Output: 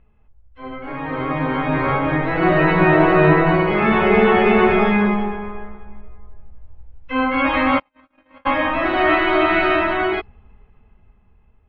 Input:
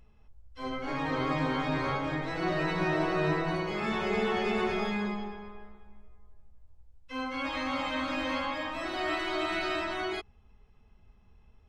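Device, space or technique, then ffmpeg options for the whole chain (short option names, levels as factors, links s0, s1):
action camera in a waterproof case: -filter_complex "[0:a]asplit=3[s0][s1][s2];[s0]afade=t=out:st=7.78:d=0.02[s3];[s1]agate=range=0.00112:threshold=0.0501:ratio=16:detection=peak,afade=t=in:st=7.78:d=0.02,afade=t=out:st=8.45:d=0.02[s4];[s2]afade=t=in:st=8.45:d=0.02[s5];[s3][s4][s5]amix=inputs=3:normalize=0,lowpass=f=2700:w=0.5412,lowpass=f=2700:w=1.3066,dynaudnorm=f=510:g=7:m=5.01,volume=1.33" -ar 24000 -c:a aac -b:a 96k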